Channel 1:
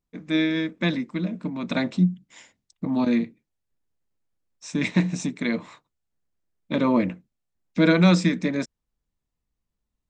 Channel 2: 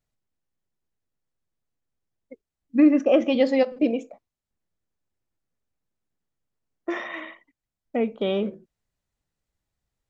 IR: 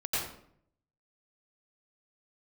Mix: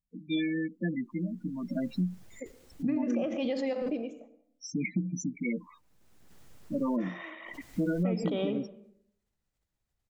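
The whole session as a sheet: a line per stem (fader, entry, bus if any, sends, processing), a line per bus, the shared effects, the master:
-5.5 dB, 0.00 s, no send, loudest bins only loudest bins 8; high shelf 2100 Hz +11 dB
6.98 s -12.5 dB -> 7.75 s -5 dB, 0.10 s, send -20.5 dB, backwards sustainer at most 27 dB/s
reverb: on, RT60 0.65 s, pre-delay 84 ms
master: compressor 5:1, threshold -26 dBFS, peak gain reduction 9 dB

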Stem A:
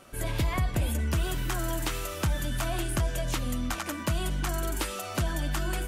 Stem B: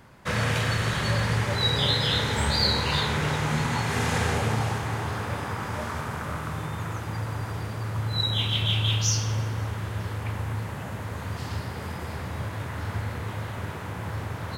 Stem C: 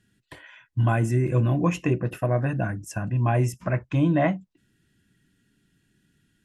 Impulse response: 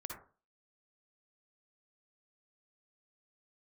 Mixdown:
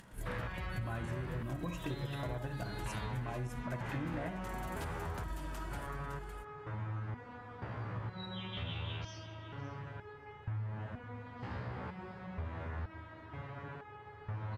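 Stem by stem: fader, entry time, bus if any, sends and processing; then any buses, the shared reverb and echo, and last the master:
-16.0 dB, 0.00 s, bus A, send -5.5 dB, echo send -8 dB, low shelf 130 Hz +10 dB; crossover distortion -50 dBFS
+1.0 dB, 0.00 s, no bus, no send, echo send -17 dB, LPF 2200 Hz 12 dB/oct; stepped resonator 2.1 Hz 62–420 Hz
-5.0 dB, 0.00 s, bus A, send -9.5 dB, no echo send, upward compressor, threshold -38 dBFS
bus A: 0.0 dB, level quantiser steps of 14 dB; limiter -25.5 dBFS, peak gain reduction 7.5 dB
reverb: on, RT60 0.35 s, pre-delay 47 ms
echo: echo 0.56 s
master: compressor, threshold -36 dBFS, peak gain reduction 12 dB

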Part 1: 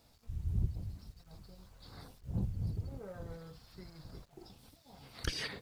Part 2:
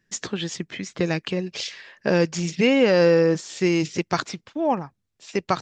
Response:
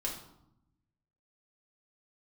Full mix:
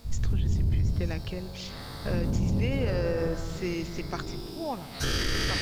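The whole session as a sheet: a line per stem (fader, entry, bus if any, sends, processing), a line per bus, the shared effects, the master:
+2.0 dB, 0.00 s, send -4 dB, spectral dilation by 0.48 s
-11.5 dB, 0.00 s, no send, dry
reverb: on, RT60 0.80 s, pre-delay 3 ms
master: limiter -18.5 dBFS, peak gain reduction 10 dB

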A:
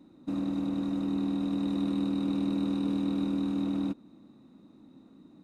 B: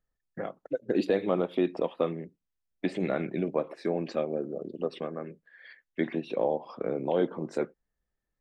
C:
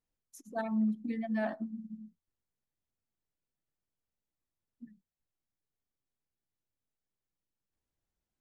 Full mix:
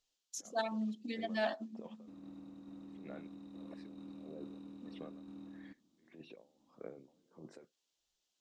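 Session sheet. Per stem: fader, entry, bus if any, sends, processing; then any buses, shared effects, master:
-19.5 dB, 1.80 s, no send, tremolo saw down 2.3 Hz, depth 35%
-14.0 dB, 0.00 s, no send, limiter -20 dBFS, peak gain reduction 6.5 dB; negative-ratio compressor -34 dBFS, ratio -1; dB-linear tremolo 1.6 Hz, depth 28 dB
+1.0 dB, 0.00 s, no send, HPF 350 Hz 12 dB/oct; band shelf 4600 Hz +14.5 dB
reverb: off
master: high shelf 6000 Hz -4.5 dB

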